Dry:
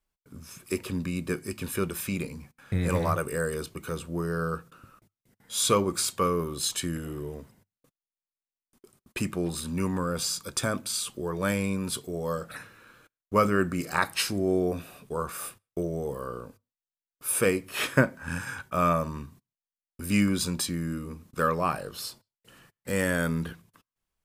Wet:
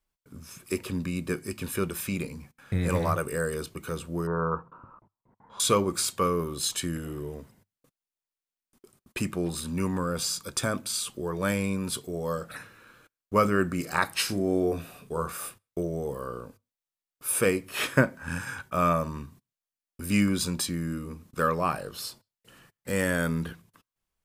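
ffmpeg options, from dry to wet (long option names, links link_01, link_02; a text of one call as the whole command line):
ffmpeg -i in.wav -filter_complex "[0:a]asettb=1/sr,asplit=3[link_01][link_02][link_03];[link_01]atrim=end=4.274[link_04];[link_02]atrim=start=4.27:end=5.6,asetpts=PTS-STARTPTS,afade=type=in:duration=0.004:curve=qsin,afade=type=out:start_time=1.326:duration=0.004:curve=qsin,lowpass=frequency=980:width_type=q:width=7[link_05];[link_03]atrim=start=5.596[link_06];[link_04][link_05]acrossfade=duration=0.004:curve1=hsin:curve2=qsin[link_07];[link_07][link_06]acrossfade=duration=0.004:curve1=qsin:curve2=hsin,asettb=1/sr,asplit=3[link_08][link_09][link_10];[link_08]atrim=end=14.254[link_11];[link_09]atrim=start=14.25:end=15.37,asetpts=PTS-STARTPTS,afade=type=in:duration=0.004:curve=qsin,afade=type=out:start_time=1.116:duration=0.004:curve=qsin,asplit=2[link_12][link_13];[link_13]adelay=36,volume=-9dB[link_14];[link_12][link_14]amix=inputs=2:normalize=0,atrim=end_sample=49392[link_15];[link_10]atrim=start=15.366[link_16];[link_11][link_15]acrossfade=duration=0.004:curve1=hsin:curve2=qsin[link_17];[link_17][link_16]acrossfade=duration=0.004:curve1=qsin:curve2=hsin" out.wav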